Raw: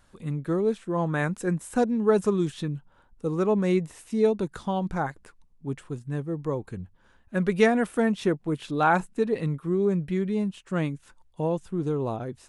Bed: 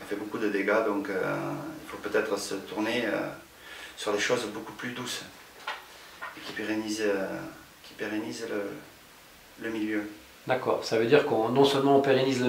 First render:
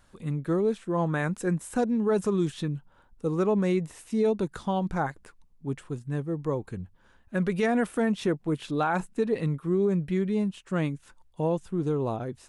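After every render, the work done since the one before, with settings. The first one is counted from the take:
brickwall limiter −16.5 dBFS, peak gain reduction 9 dB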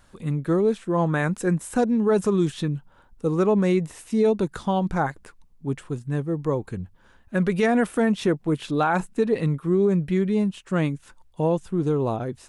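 level +4.5 dB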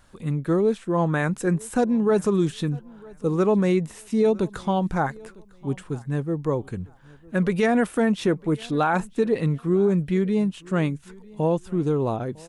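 repeating echo 953 ms, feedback 27%, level −24 dB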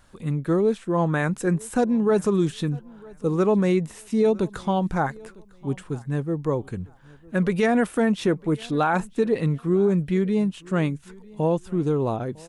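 no processing that can be heard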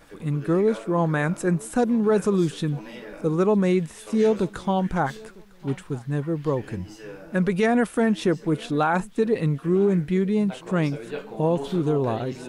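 mix in bed −12.5 dB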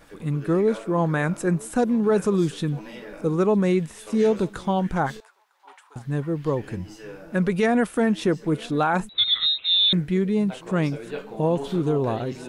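0:05.20–0:05.96: four-pole ladder high-pass 770 Hz, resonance 55%
0:09.09–0:09.93: voice inversion scrambler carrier 3,900 Hz

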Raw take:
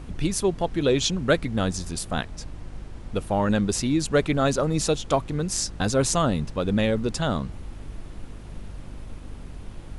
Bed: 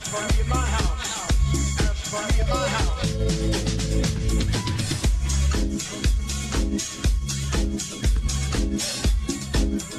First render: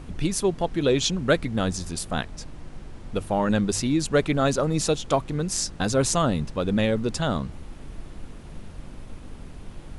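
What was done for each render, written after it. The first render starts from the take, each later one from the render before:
hum removal 50 Hz, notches 2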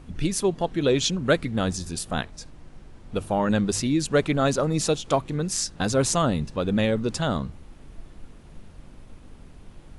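noise reduction from a noise print 6 dB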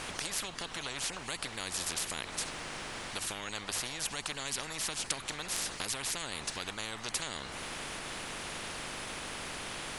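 downward compressor, threshold −31 dBFS, peak gain reduction 15.5 dB
every bin compressed towards the loudest bin 10 to 1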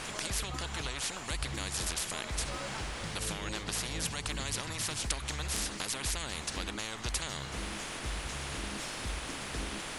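mix in bed −18 dB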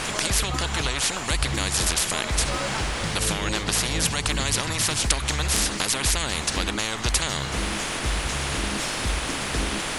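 level +11.5 dB

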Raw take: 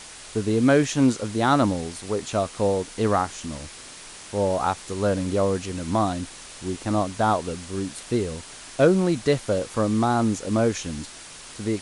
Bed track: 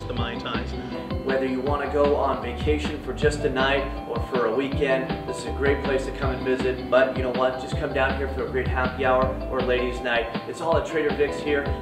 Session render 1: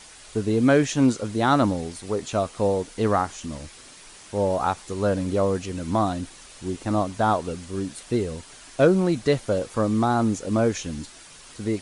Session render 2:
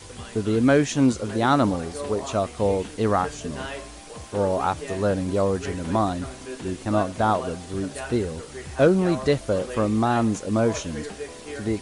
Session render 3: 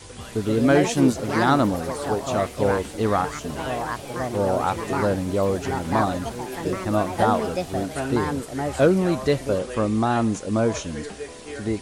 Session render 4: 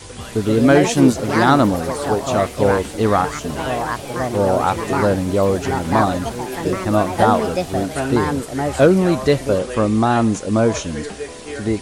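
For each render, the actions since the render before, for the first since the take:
broadband denoise 6 dB, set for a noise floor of −42 dBFS
mix in bed track −12.5 dB
delay with pitch and tempo change per echo 206 ms, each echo +4 semitones, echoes 2, each echo −6 dB
level +5.5 dB; brickwall limiter −1 dBFS, peak gain reduction 1.5 dB

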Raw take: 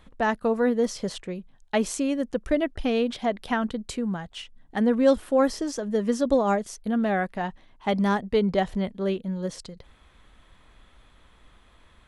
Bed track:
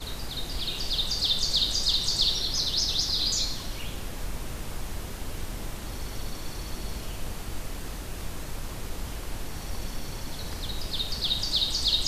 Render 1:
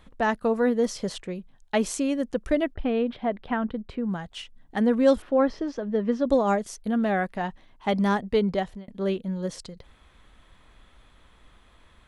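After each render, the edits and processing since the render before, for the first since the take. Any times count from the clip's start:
0:02.74–0:04.09: high-frequency loss of the air 400 metres
0:05.22–0:06.27: high-frequency loss of the air 240 metres
0:08.29–0:08.88: fade out equal-power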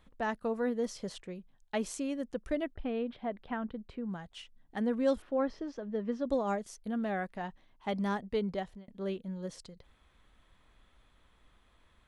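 level −9.5 dB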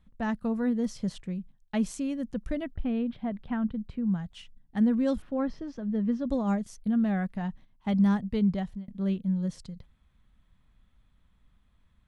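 noise gate −56 dBFS, range −8 dB
low shelf with overshoot 270 Hz +10 dB, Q 1.5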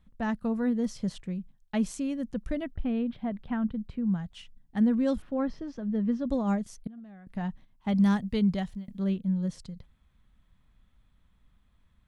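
0:06.87–0:07.27: noise gate −21 dBFS, range −21 dB
0:07.95–0:09.04: high-shelf EQ 2,300 Hz +8 dB

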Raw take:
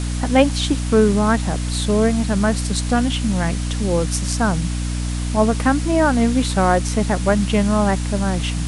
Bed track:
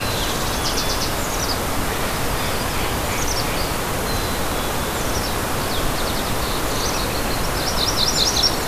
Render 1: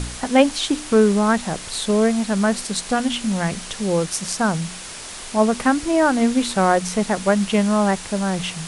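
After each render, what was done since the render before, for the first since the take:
hum removal 60 Hz, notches 5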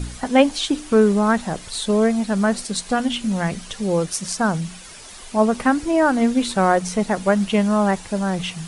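broadband denoise 9 dB, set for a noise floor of −35 dBFS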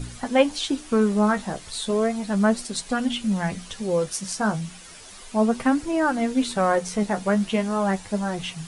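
flanger 0.35 Hz, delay 7.1 ms, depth 8.3 ms, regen +36%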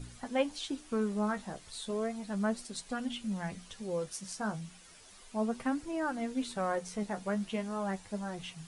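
level −12 dB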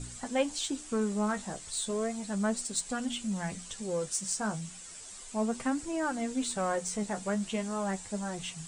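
low-pass with resonance 7,900 Hz, resonance Q 4.9
in parallel at −7.5 dB: soft clipping −34 dBFS, distortion −9 dB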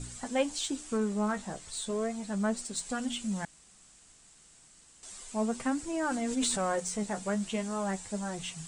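0:00.97–0:02.81: high-shelf EQ 4,500 Hz −5 dB
0:03.45–0:05.03: fill with room tone
0:05.90–0:06.80: level that may fall only so fast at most 27 dB per second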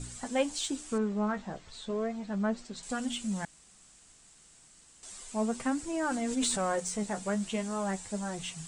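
0:00.98–0:02.83: high-frequency loss of the air 150 metres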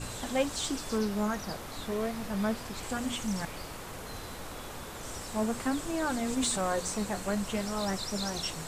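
mix in bed track −19.5 dB

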